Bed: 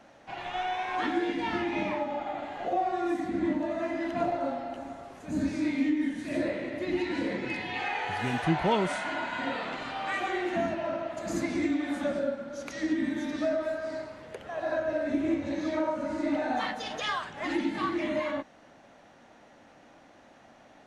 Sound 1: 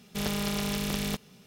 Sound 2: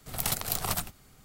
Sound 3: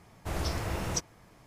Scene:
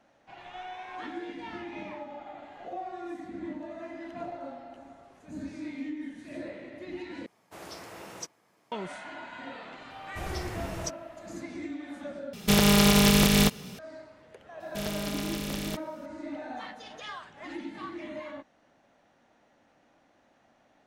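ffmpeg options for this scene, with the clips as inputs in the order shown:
-filter_complex "[3:a]asplit=2[s0][s1];[1:a]asplit=2[s2][s3];[0:a]volume=0.335[s4];[s0]highpass=260[s5];[s2]alimiter=level_in=9.44:limit=0.891:release=50:level=0:latency=1[s6];[s4]asplit=3[s7][s8][s9];[s7]atrim=end=7.264[s10];[s5]atrim=end=1.46,asetpts=PTS-STARTPTS,volume=0.422[s11];[s8]atrim=start=8.716:end=12.334[s12];[s6]atrim=end=1.46,asetpts=PTS-STARTPTS,volume=0.422[s13];[s9]atrim=start=13.786[s14];[s1]atrim=end=1.46,asetpts=PTS-STARTPTS,volume=0.631,afade=t=in:d=0.004:c=hsin,afade=t=out:st=1.456:d=0.004:c=hsin,adelay=9900[s15];[s3]atrim=end=1.46,asetpts=PTS-STARTPTS,volume=0.668,afade=t=in:d=0.004:c=hsin,afade=t=out:st=1.456:d=0.004:c=hsin,adelay=643860S[s16];[s10][s11]acrossfade=d=0.004:c1=hsin:c2=hsin[s17];[s17][s12]acrossfade=d=0.004:c1=hsin:c2=hsin[s18];[s18][s13]acrossfade=d=0.004:c1=hsin:c2=hsin[s19];[s19][s14]acrossfade=d=0.004:c1=hsin:c2=hsin[s20];[s20][s15][s16]amix=inputs=3:normalize=0"

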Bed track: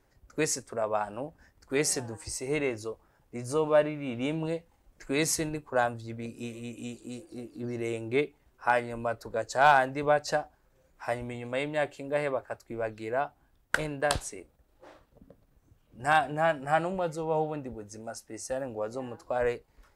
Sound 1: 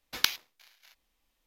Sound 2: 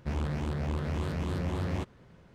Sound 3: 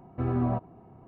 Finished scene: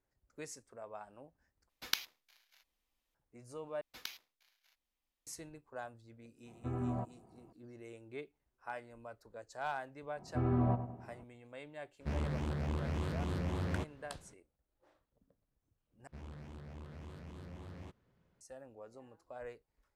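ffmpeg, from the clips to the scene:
-filter_complex "[1:a]asplit=2[s0][s1];[3:a]asplit=2[s2][s3];[2:a]asplit=2[s4][s5];[0:a]volume=0.119[s6];[s1]alimiter=limit=0.316:level=0:latency=1:release=14[s7];[s3]asplit=2[s8][s9];[s9]adelay=99,lowpass=f=2000:p=1,volume=0.299,asplit=2[s10][s11];[s11]adelay=99,lowpass=f=2000:p=1,volume=0.45,asplit=2[s12][s13];[s13]adelay=99,lowpass=f=2000:p=1,volume=0.45,asplit=2[s14][s15];[s15]adelay=99,lowpass=f=2000:p=1,volume=0.45,asplit=2[s16][s17];[s17]adelay=99,lowpass=f=2000:p=1,volume=0.45[s18];[s8][s10][s12][s14][s16][s18]amix=inputs=6:normalize=0[s19];[s6]asplit=4[s20][s21][s22][s23];[s20]atrim=end=1.694[s24];[s0]atrim=end=1.46,asetpts=PTS-STARTPTS,volume=0.355[s25];[s21]atrim=start=3.146:end=3.814[s26];[s7]atrim=end=1.46,asetpts=PTS-STARTPTS,volume=0.2[s27];[s22]atrim=start=5.266:end=16.074[s28];[s5]atrim=end=2.34,asetpts=PTS-STARTPTS,volume=0.133[s29];[s23]atrim=start=18.406[s30];[s2]atrim=end=1.07,asetpts=PTS-STARTPTS,volume=0.316,afade=t=in:d=0.004:c=hsin,afade=t=out:st=1.066:d=0.004:c=hsin,adelay=6460[s31];[s19]atrim=end=1.07,asetpts=PTS-STARTPTS,volume=0.596,afade=t=in:d=0.004:c=hsin,afade=t=out:st=1.066:d=0.004:c=hsin,adelay=10170[s32];[s4]atrim=end=2.34,asetpts=PTS-STARTPTS,volume=0.596,afade=t=in:d=0.004:c=hsin,afade=t=out:st=2.336:d=0.004:c=hsin,adelay=12000[s33];[s24][s25]acrossfade=d=0.004:c1=hsin:c2=hsin[s34];[s34][s26]acrossfade=d=0.004:c1=hsin:c2=hsin[s35];[s35][s27]acrossfade=d=0.004:c1=hsin:c2=hsin[s36];[s36][s28]acrossfade=d=0.004:c1=hsin:c2=hsin[s37];[s37][s29]acrossfade=d=0.004:c1=hsin:c2=hsin[s38];[s38][s30]acrossfade=d=0.004:c1=hsin:c2=hsin[s39];[s39][s31][s32][s33]amix=inputs=4:normalize=0"

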